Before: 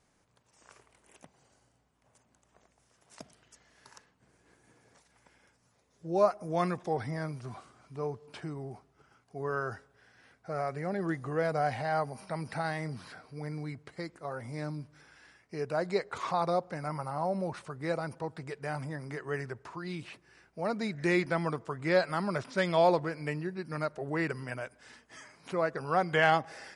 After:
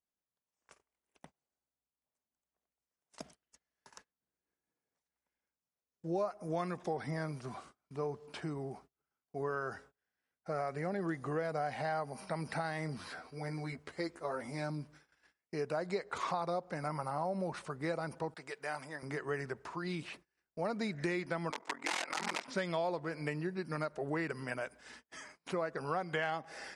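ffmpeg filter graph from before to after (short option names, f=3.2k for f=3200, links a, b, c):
-filter_complex "[0:a]asettb=1/sr,asplit=3[a][b][c];[a]atrim=end=12.984[d];[b]atrim=start=12.98:end=14.7,asetpts=PTS-STARTPTS,afade=t=in:d=0.004:c=qsin,afade=t=out:st=1.716:d=0.004:c=qsin,equalizer=f=170:w=3.3:g=-7.5,asplit=2[e][f];[f]adelay=12,volume=-3.5dB[g];[e][g]amix=inputs=2:normalize=0,atrim=end_sample=75852[h];[c]atrim=start=14.696[i];[d][h]acrossfade=d=0.004:c1=hsin:c2=qsin[j];[j][i]acrossfade=d=0.004:c1=qsin:c2=hsin,asettb=1/sr,asplit=3[k][l][m];[k]atrim=end=18.344[n];[l]atrim=start=18.34:end=19.03,asetpts=PTS-STARTPTS,afade=t=in:d=0.004:c=qsin,afade=t=out:st=0.686:d=0.004:c=qsin,agate=range=-33dB:threshold=-53dB:ratio=3:release=100:detection=peak,highpass=f=780:p=1[o];[m]atrim=start=19.026[p];[n][o]acrossfade=d=0.004:c1=hsin:c2=qsin[q];[q][p]acrossfade=d=0.004:c1=qsin:c2=hsin,asettb=1/sr,asplit=3[r][s][t];[r]atrim=end=21.504[u];[s]atrim=start=21.5:end=22.48,asetpts=PTS-STARTPTS,afade=t=in:d=0.004:c=qsin,afade=t=out:st=0.976:d=0.004:c=qsin,aeval=exprs='(mod(20*val(0)+1,2)-1)/20':c=same,highpass=f=250:w=0.5412,highpass=f=250:w=1.3066,equalizer=f=410:t=q:w=4:g=-6,equalizer=f=890:t=q:w=4:g=9,equalizer=f=2.1k:t=q:w=4:g=8,lowpass=f=8.8k:w=0.5412,lowpass=f=8.8k:w=1.3066,aeval=exprs='val(0)*sin(2*PI*21*n/s)':c=same[v];[t]atrim=start=22.476[w];[u][v]acrossfade=d=0.004:c1=hsin:c2=qsin[x];[x][w]acrossfade=d=0.004:c1=qsin:c2=hsin,agate=range=-29dB:threshold=-55dB:ratio=16:detection=peak,equalizer=f=110:w=4:g=-13.5,acompressor=threshold=-33dB:ratio=6,volume=1dB"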